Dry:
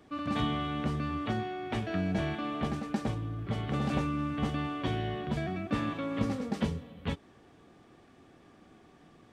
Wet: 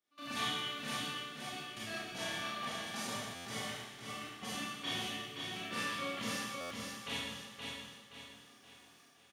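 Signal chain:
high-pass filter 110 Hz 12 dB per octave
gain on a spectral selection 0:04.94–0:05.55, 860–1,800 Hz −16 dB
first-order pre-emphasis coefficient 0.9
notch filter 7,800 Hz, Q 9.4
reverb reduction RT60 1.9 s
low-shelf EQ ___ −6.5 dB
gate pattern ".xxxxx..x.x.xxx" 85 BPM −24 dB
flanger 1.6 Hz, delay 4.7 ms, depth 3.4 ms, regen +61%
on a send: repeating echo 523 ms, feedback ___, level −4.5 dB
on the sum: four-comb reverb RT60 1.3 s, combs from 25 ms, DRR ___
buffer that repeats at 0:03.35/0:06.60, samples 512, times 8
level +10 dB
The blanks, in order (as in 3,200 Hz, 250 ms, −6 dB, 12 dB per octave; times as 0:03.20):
370 Hz, 41%, −8.5 dB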